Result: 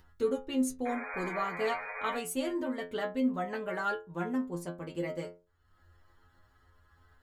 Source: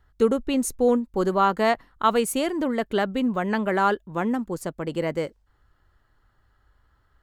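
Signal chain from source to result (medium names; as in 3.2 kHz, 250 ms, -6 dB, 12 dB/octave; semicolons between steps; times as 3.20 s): painted sound noise, 0.85–2.16 s, 410–2500 Hz -31 dBFS; upward compressor, threshold -40 dBFS; inharmonic resonator 85 Hz, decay 0.35 s, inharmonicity 0.002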